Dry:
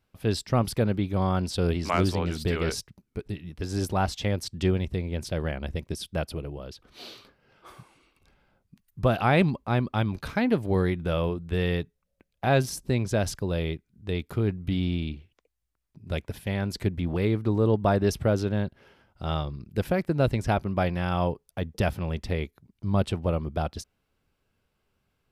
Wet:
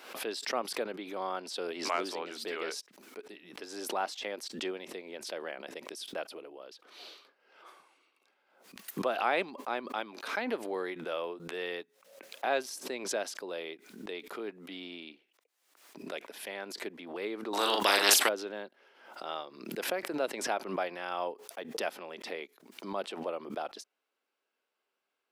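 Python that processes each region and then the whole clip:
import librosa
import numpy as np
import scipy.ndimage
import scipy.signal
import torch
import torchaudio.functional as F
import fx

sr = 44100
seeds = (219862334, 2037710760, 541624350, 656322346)

y = fx.chain(x, sr, fx.bass_treble(bass_db=11, treble_db=8),
    fx.doubler(ms=40.0, db=-4.0),
    fx.spectral_comp(ratio=4.0), at=(17.53, 18.29))
y = scipy.signal.sosfilt(scipy.signal.bessel(6, 480.0, 'highpass', norm='mag', fs=sr, output='sos'), y)
y = fx.high_shelf(y, sr, hz=7600.0, db=-5.5)
y = fx.pre_swell(y, sr, db_per_s=76.0)
y = y * librosa.db_to_amplitude(-4.5)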